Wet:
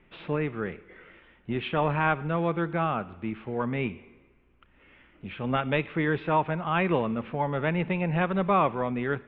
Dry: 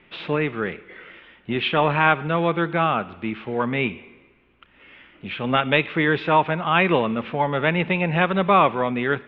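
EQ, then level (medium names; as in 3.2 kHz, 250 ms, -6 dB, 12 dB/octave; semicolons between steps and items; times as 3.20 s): low-pass 2 kHz 6 dB/octave; distance through air 51 m; bass shelf 88 Hz +11 dB; -6.0 dB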